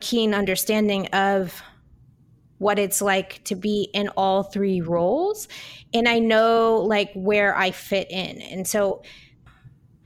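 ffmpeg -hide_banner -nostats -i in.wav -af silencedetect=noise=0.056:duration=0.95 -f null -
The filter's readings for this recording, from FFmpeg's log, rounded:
silence_start: 1.46
silence_end: 2.61 | silence_duration: 1.15
silence_start: 8.94
silence_end: 10.05 | silence_duration: 1.12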